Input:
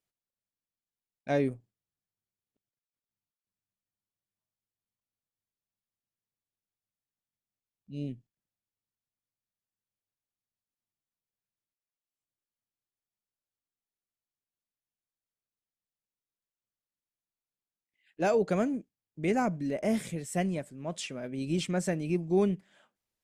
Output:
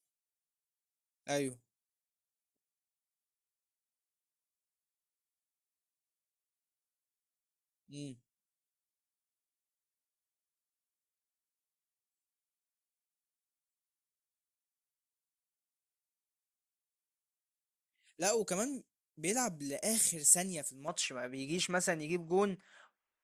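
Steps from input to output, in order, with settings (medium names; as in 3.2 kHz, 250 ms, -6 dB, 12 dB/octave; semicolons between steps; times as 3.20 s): peaking EQ 9.4 kHz +14 dB 1.9 oct, from 20.88 s 1.3 kHz; spectral noise reduction 16 dB; tone controls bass -4 dB, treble +12 dB; trim -7.5 dB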